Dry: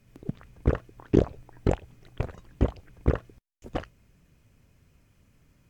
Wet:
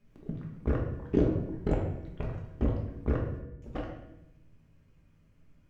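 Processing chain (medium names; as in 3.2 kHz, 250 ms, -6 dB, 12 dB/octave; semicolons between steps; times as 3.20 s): treble shelf 4.3 kHz -10.5 dB; feedback comb 160 Hz, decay 0.94 s, harmonics all, mix 60%; reverberation RT60 0.80 s, pre-delay 5 ms, DRR -1.5 dB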